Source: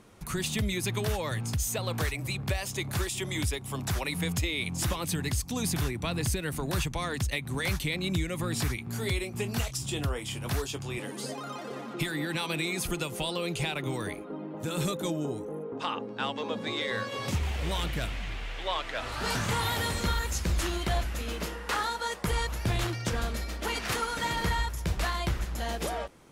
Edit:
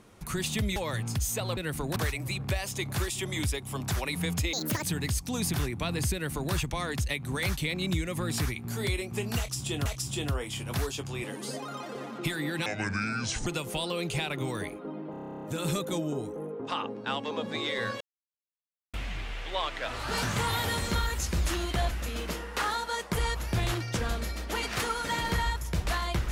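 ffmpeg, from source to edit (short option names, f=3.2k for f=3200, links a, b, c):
-filter_complex "[0:a]asplit=22[a][b][c][d][e][f][g][h][i][j][k][l][m][n][o][p][q][r][s][t][u][v];[a]atrim=end=0.762[w];[b]atrim=start=1.138:end=1.952[x];[c]atrim=start=6.358:end=6.752[y];[d]atrim=start=1.948:end=4.524[z];[e]atrim=start=4.52:end=5.05,asetpts=PTS-STARTPTS,asetrate=78939,aresample=44100[aa];[f]atrim=start=5.046:end=10.082[ab];[g]atrim=start=9.608:end=12.414[ac];[h]atrim=start=12.41:end=12.92,asetpts=PTS-STARTPTS,asetrate=27783,aresample=44100[ad];[i]atrim=start=12.916:end=14.592[ae];[j]atrim=start=14.558:end=14.592[af];[k]atrim=start=14.558:end=14.592[ag];[l]atrim=start=14.558:end=14.592[ah];[m]atrim=start=14.558:end=14.592[ai];[n]atrim=start=14.558:end=14.592[aj];[o]atrim=start=14.558:end=14.592[ak];[p]atrim=start=14.558:end=14.592[al];[q]atrim=start=14.558:end=14.592[am];[r]atrim=start=14.558:end=14.592[an];[s]atrim=start=14.558:end=14.592[ao];[t]atrim=start=14.558:end=17.13,asetpts=PTS-STARTPTS,afade=t=out:st=2.568:d=0.004:c=hsin[ap];[u]atrim=start=17.13:end=18.06,asetpts=PTS-STARTPTS,volume=0[aq];[v]atrim=start=18.06,asetpts=PTS-STARTPTS,afade=t=in:d=0.004:c=hsin[ar];[w][x]acrossfade=d=0.004:c1=hsin:c2=hsin[as];[as][y]acrossfade=d=0.004:c1=hsin:c2=hsin[at];[at][z]acrossfade=d=0.004:c1=hsin:c2=hsin[au];[au][aa]acrossfade=d=0.004:c1=hsin:c2=hsin[av];[av][ab]acrossfade=d=0.004:c1=hsin:c2=hsin[aw];[aw][ac]acrossfade=d=0.004:c1=hsin:c2=hsin[ax];[ax][ad]acrossfade=d=0.004:c1=hsin:c2=hsin[ay];[ay][ae]acrossfade=d=0.004:c1=hsin:c2=hsin[az];[az][af]acrossfade=d=0.004:c1=hsin:c2=hsin[ba];[ba][ag]acrossfade=d=0.004:c1=hsin:c2=hsin[bb];[bb][ah]acrossfade=d=0.004:c1=hsin:c2=hsin[bc];[bc][ai]acrossfade=d=0.004:c1=hsin:c2=hsin[bd];[bd][aj]acrossfade=d=0.004:c1=hsin:c2=hsin[be];[be][ak]acrossfade=d=0.004:c1=hsin:c2=hsin[bf];[bf][al]acrossfade=d=0.004:c1=hsin:c2=hsin[bg];[bg][am]acrossfade=d=0.004:c1=hsin:c2=hsin[bh];[bh][an]acrossfade=d=0.004:c1=hsin:c2=hsin[bi];[bi][ao]acrossfade=d=0.004:c1=hsin:c2=hsin[bj];[ap][aq][ar]concat=n=3:v=0:a=1[bk];[bj][bk]acrossfade=d=0.004:c1=hsin:c2=hsin"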